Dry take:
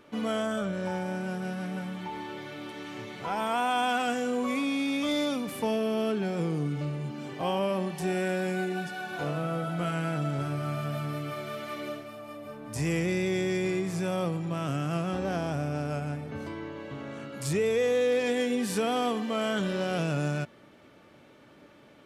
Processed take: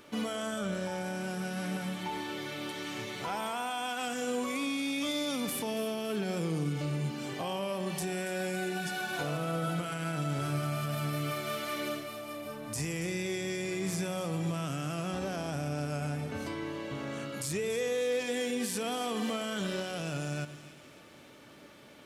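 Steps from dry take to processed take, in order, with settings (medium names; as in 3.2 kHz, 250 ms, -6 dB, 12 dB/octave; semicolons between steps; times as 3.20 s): treble shelf 3.4 kHz +10.5 dB; peak limiter -25 dBFS, peak gain reduction 12 dB; on a send: two-band feedback delay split 1.9 kHz, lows 115 ms, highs 282 ms, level -13 dB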